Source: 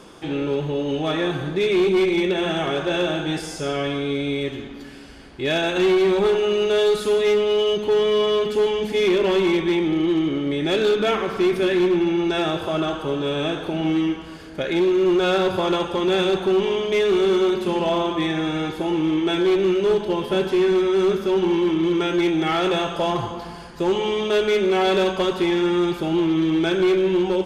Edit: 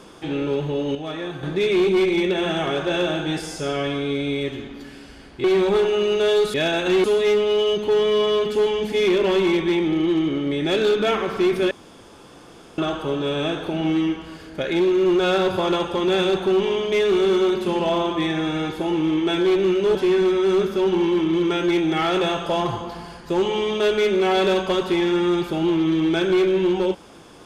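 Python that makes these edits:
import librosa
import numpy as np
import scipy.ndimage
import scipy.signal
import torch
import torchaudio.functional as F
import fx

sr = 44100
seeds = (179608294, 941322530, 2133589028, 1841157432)

y = fx.edit(x, sr, fx.clip_gain(start_s=0.95, length_s=0.48, db=-7.0),
    fx.move(start_s=5.44, length_s=0.5, to_s=7.04),
    fx.room_tone_fill(start_s=11.71, length_s=1.07),
    fx.cut(start_s=19.95, length_s=0.5), tone=tone)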